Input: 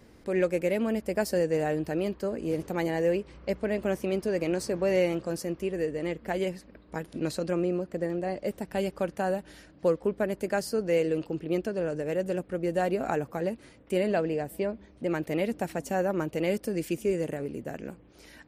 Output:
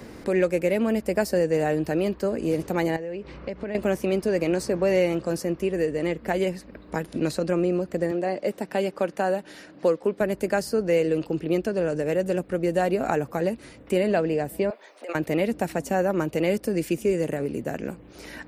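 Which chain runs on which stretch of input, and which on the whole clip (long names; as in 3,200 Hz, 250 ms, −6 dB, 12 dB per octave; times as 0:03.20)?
0:02.96–0:03.75: low-pass filter 4,700 Hz + downward compressor 8 to 1, threshold −36 dBFS
0:08.11–0:10.21: high-pass filter 220 Hz + high-shelf EQ 8,500 Hz −7.5 dB
0:14.70–0:15.15: high-pass filter 560 Hz 24 dB per octave + compressor whose output falls as the input rises −42 dBFS
whole clip: notch filter 3,200 Hz, Q 25; multiband upward and downward compressor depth 40%; level +4.5 dB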